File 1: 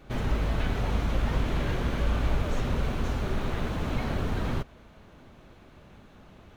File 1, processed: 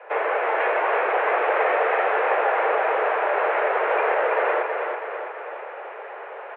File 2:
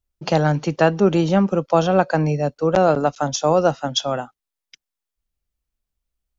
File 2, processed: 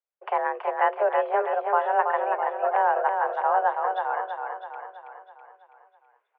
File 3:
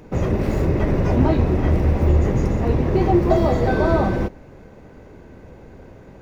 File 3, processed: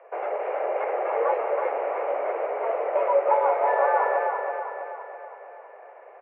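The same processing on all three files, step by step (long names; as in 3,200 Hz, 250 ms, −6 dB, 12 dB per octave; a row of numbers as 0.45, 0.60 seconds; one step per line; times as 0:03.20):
reversed playback
upward compression, threshold −38 dBFS
reversed playback
repeating echo 327 ms, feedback 53%, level −5 dB
single-sideband voice off tune +210 Hz 260–2,200 Hz
normalise the peak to −9 dBFS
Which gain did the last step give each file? +13.0, −6.0, −3.5 decibels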